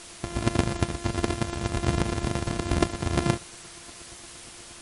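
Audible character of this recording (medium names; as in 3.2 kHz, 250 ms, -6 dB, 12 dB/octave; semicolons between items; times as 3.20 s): a buzz of ramps at a fixed pitch in blocks of 128 samples; chopped level 8.5 Hz, depth 60%, duty 15%; a quantiser's noise floor 8-bit, dither triangular; MP3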